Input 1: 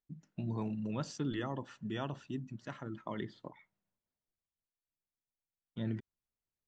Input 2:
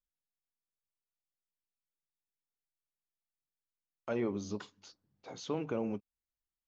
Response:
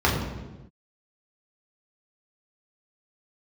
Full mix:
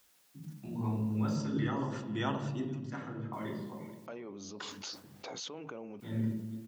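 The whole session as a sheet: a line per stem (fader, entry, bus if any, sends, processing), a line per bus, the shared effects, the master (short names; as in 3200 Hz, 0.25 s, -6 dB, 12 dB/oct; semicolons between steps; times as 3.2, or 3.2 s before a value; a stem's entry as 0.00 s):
+3.0 dB, 0.25 s, send -20 dB, echo send -24 dB, high shelf 4700 Hz +6.5 dB; auto duck -16 dB, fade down 0.85 s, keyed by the second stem
-11.0 dB, 0.00 s, muted 1.36–3.33, no send, no echo send, fast leveller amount 100%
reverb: on, pre-delay 3 ms
echo: echo 0.485 s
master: HPF 310 Hz 6 dB/oct; sustainer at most 150 dB/s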